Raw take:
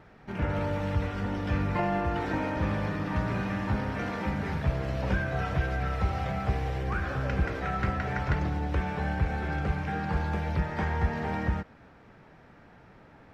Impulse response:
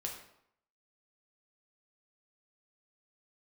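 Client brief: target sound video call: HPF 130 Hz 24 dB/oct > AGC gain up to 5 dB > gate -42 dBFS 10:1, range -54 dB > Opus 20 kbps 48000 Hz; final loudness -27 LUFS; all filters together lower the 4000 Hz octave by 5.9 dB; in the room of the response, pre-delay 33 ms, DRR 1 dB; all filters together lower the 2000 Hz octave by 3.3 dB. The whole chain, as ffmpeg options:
-filter_complex "[0:a]equalizer=f=2k:t=o:g=-3,equalizer=f=4k:t=o:g=-7,asplit=2[a][b];[1:a]atrim=start_sample=2205,adelay=33[c];[b][c]afir=irnorm=-1:irlink=0,volume=-1dB[d];[a][d]amix=inputs=2:normalize=0,highpass=f=130:w=0.5412,highpass=f=130:w=1.3066,dynaudnorm=m=5dB,agate=range=-54dB:threshold=-42dB:ratio=10,volume=4dB" -ar 48000 -c:a libopus -b:a 20k

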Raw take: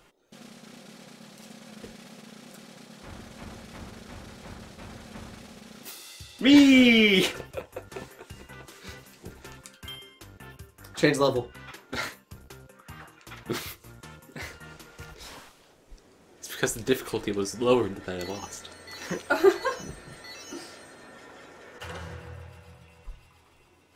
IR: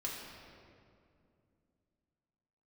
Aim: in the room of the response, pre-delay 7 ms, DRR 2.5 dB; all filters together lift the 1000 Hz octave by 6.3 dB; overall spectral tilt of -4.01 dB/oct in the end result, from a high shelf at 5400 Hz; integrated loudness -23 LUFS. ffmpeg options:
-filter_complex "[0:a]equalizer=f=1k:t=o:g=7.5,highshelf=f=5.4k:g=6,asplit=2[a][b];[1:a]atrim=start_sample=2205,adelay=7[c];[b][c]afir=irnorm=-1:irlink=0,volume=-4dB[d];[a][d]amix=inputs=2:normalize=0,volume=-2.5dB"

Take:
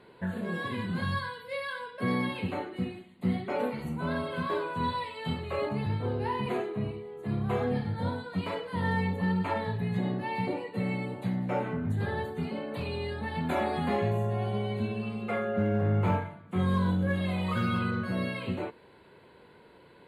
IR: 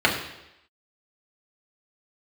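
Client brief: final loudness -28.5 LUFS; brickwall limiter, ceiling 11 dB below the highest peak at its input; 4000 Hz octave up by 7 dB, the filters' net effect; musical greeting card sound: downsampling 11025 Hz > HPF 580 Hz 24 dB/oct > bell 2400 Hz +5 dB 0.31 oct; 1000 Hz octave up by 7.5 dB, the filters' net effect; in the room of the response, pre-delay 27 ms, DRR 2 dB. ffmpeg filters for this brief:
-filter_complex "[0:a]equalizer=f=1k:t=o:g=8.5,equalizer=f=4k:t=o:g=7.5,alimiter=limit=-23.5dB:level=0:latency=1,asplit=2[a][b];[1:a]atrim=start_sample=2205,adelay=27[c];[b][c]afir=irnorm=-1:irlink=0,volume=-21dB[d];[a][d]amix=inputs=2:normalize=0,aresample=11025,aresample=44100,highpass=f=580:w=0.5412,highpass=f=580:w=1.3066,equalizer=f=2.4k:t=o:w=0.31:g=5,volume=4dB"

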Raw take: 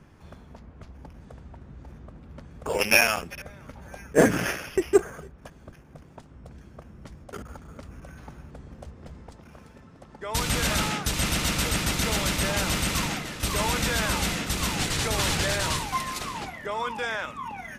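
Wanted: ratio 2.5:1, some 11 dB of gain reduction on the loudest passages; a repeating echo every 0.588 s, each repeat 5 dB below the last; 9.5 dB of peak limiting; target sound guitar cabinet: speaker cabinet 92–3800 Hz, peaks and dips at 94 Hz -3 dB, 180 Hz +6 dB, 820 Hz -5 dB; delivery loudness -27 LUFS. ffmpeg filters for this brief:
-af "acompressor=threshold=-30dB:ratio=2.5,alimiter=limit=-23.5dB:level=0:latency=1,highpass=92,equalizer=f=94:t=q:w=4:g=-3,equalizer=f=180:t=q:w=4:g=6,equalizer=f=820:t=q:w=4:g=-5,lowpass=f=3.8k:w=0.5412,lowpass=f=3.8k:w=1.3066,aecho=1:1:588|1176|1764|2352|2940|3528|4116:0.562|0.315|0.176|0.0988|0.0553|0.031|0.0173,volume=8dB"

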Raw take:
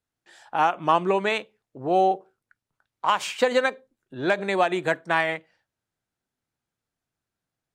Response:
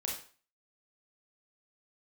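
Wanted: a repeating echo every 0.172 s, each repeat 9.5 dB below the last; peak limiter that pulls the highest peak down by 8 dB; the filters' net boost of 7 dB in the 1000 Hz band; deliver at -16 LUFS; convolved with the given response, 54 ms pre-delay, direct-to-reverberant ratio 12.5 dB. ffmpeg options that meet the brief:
-filter_complex "[0:a]equalizer=f=1k:t=o:g=9,alimiter=limit=-9dB:level=0:latency=1,aecho=1:1:172|344|516|688:0.335|0.111|0.0365|0.012,asplit=2[a][b];[1:a]atrim=start_sample=2205,adelay=54[c];[b][c]afir=irnorm=-1:irlink=0,volume=-14.5dB[d];[a][d]amix=inputs=2:normalize=0,volume=6dB"

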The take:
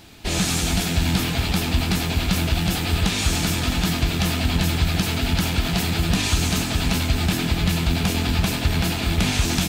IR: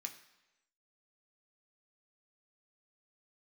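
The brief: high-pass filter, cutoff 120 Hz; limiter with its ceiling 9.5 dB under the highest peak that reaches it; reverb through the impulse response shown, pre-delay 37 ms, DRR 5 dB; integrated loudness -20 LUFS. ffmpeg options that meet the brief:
-filter_complex "[0:a]highpass=120,alimiter=limit=-17.5dB:level=0:latency=1,asplit=2[a][b];[1:a]atrim=start_sample=2205,adelay=37[c];[b][c]afir=irnorm=-1:irlink=0,volume=-2dB[d];[a][d]amix=inputs=2:normalize=0,volume=5dB"

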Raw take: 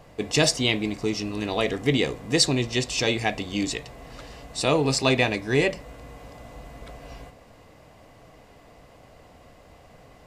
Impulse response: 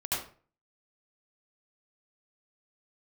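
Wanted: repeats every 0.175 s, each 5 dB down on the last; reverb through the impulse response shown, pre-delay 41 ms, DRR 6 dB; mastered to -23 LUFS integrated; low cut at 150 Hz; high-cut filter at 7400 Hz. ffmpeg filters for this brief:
-filter_complex "[0:a]highpass=150,lowpass=7.4k,aecho=1:1:175|350|525|700|875|1050|1225:0.562|0.315|0.176|0.0988|0.0553|0.031|0.0173,asplit=2[a][b];[1:a]atrim=start_sample=2205,adelay=41[c];[b][c]afir=irnorm=-1:irlink=0,volume=-12.5dB[d];[a][d]amix=inputs=2:normalize=0,volume=-0.5dB"

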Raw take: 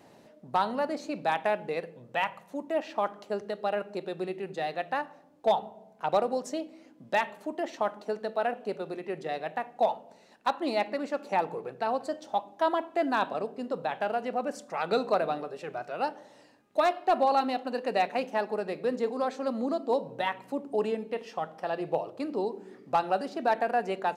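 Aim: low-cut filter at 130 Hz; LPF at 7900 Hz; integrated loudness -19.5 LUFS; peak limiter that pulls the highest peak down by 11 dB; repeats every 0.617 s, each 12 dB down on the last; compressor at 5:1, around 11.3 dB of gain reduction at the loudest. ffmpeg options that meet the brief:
-af "highpass=130,lowpass=7.9k,acompressor=threshold=-33dB:ratio=5,alimiter=level_in=5.5dB:limit=-24dB:level=0:latency=1,volume=-5.5dB,aecho=1:1:617|1234|1851:0.251|0.0628|0.0157,volume=21dB"

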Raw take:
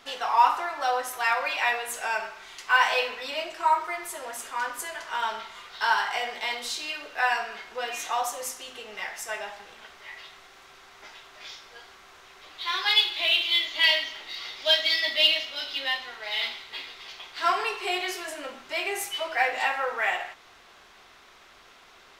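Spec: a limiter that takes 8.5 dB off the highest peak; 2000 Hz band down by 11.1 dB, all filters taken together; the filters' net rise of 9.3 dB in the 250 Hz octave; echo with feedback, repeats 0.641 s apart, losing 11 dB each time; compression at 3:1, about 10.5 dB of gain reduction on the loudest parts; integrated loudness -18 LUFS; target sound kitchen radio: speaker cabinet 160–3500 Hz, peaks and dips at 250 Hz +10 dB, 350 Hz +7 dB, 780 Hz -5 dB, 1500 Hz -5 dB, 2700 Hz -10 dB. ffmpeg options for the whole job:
-af "equalizer=f=250:t=o:g=3.5,equalizer=f=2k:t=o:g=-8.5,acompressor=threshold=-30dB:ratio=3,alimiter=level_in=2.5dB:limit=-24dB:level=0:latency=1,volume=-2.5dB,highpass=160,equalizer=f=250:t=q:w=4:g=10,equalizer=f=350:t=q:w=4:g=7,equalizer=f=780:t=q:w=4:g=-5,equalizer=f=1.5k:t=q:w=4:g=-5,equalizer=f=2.7k:t=q:w=4:g=-10,lowpass=f=3.5k:w=0.5412,lowpass=f=3.5k:w=1.3066,aecho=1:1:641|1282|1923:0.282|0.0789|0.0221,volume=21dB"

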